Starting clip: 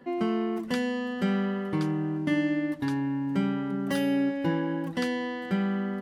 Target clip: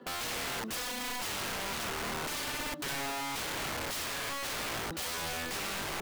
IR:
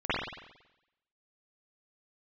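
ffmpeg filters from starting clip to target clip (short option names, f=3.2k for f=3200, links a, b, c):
-filter_complex "[0:a]acrossover=split=460[a][b];[a]alimiter=level_in=2.5dB:limit=-24dB:level=0:latency=1:release=120,volume=-2.5dB[c];[c][b]amix=inputs=2:normalize=0,highpass=170,equalizer=f=420:t=q:w=4:g=5,equalizer=f=1.3k:t=q:w=4:g=6,equalizer=f=1.9k:t=q:w=4:g=-7,equalizer=f=3.7k:t=q:w=4:g=4,lowpass=f=6.7k:w=0.5412,lowpass=f=6.7k:w=1.3066,acrusher=bits=8:mode=log:mix=0:aa=0.000001,aeval=exprs='(mod(37.6*val(0)+1,2)-1)/37.6':c=same"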